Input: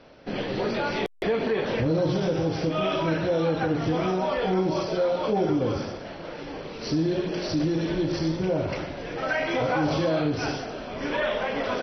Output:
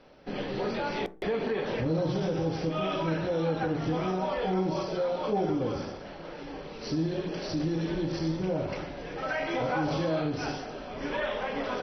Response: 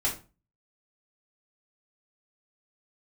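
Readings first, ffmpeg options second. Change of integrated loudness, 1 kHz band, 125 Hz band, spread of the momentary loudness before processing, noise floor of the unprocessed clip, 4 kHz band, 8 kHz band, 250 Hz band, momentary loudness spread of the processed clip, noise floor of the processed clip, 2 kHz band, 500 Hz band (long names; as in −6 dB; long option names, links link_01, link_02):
−4.5 dB, −3.5 dB, −3.5 dB, 9 LU, −38 dBFS, −5.5 dB, can't be measured, −4.5 dB, 9 LU, −43 dBFS, −5.0 dB, −5.0 dB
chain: -filter_complex "[0:a]asplit=2[link_01][link_02];[link_02]highshelf=frequency=1900:width_type=q:width=1.5:gain=-9[link_03];[1:a]atrim=start_sample=2205[link_04];[link_03][link_04]afir=irnorm=-1:irlink=0,volume=-17dB[link_05];[link_01][link_05]amix=inputs=2:normalize=0,volume=-5.5dB"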